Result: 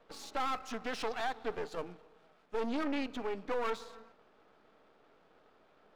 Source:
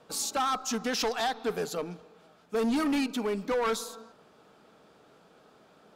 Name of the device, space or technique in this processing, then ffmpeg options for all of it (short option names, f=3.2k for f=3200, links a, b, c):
crystal radio: -filter_complex "[0:a]highpass=240,lowpass=3.2k,aeval=exprs='if(lt(val(0),0),0.251*val(0),val(0))':c=same,asettb=1/sr,asplit=3[a][b][c];[a]atrim=end=1.724[d];[b]atrim=start=1.72:end=2.77,asetpts=PTS-STARTPTS,afade=t=in:d=0.004:c=qsin,afade=t=out:st=1.046:d=0.004:c=qsin,equalizer=f=10k:w=0.65:g=4[e];[c]atrim=start=2.766[f];[d][e]acrossfade=d=0.004:c1=hsin:c2=qsin[g];[g][f]acrossfade=d=0.004:c1=qsin:c2=hsin,volume=-2.5dB"